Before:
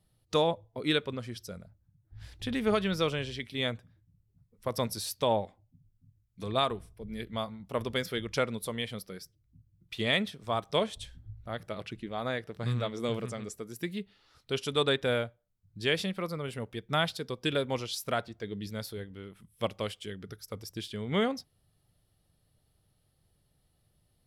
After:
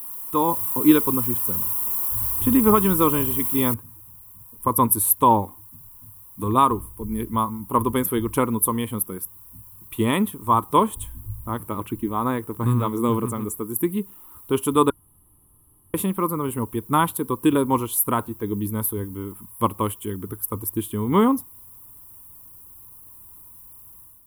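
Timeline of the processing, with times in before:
3.74 noise floor step -48 dB -69 dB
14.9–15.94 room tone
whole clip: EQ curve 100 Hz 0 dB, 150 Hz -7 dB, 300 Hz +5 dB, 670 Hz -15 dB, 990 Hz +9 dB, 1700 Hz -14 dB, 3000 Hz -13 dB, 4900 Hz -28 dB, 8600 Hz +2 dB, 12000 Hz +13 dB; AGC gain up to 10.5 dB; notch 1400 Hz, Q 23; gain +2.5 dB

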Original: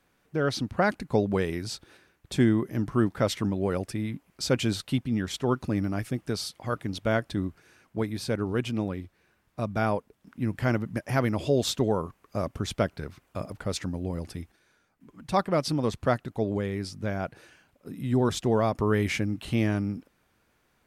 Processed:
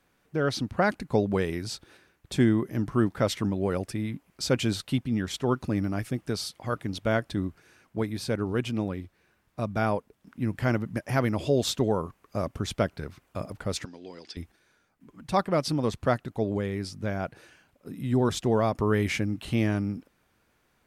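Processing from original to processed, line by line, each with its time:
13.85–14.37 speaker cabinet 490–6700 Hz, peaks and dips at 580 Hz -10 dB, 820 Hz -6 dB, 1200 Hz -7 dB, 3400 Hz +7 dB, 4800 Hz +8 dB

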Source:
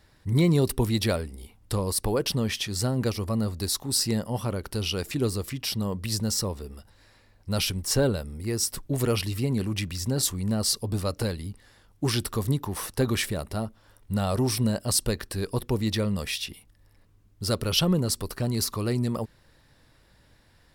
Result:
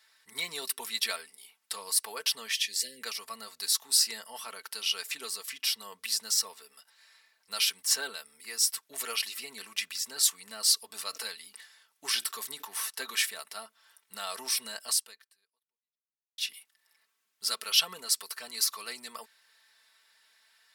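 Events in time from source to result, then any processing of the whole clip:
2.53–3.02 spectral delete 620–1600 Hz
10.77–12.8 sustainer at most 120 dB/s
14.89–16.38 fade out exponential
whole clip: HPF 1500 Hz 12 dB/oct; comb 4.5 ms, depth 67%

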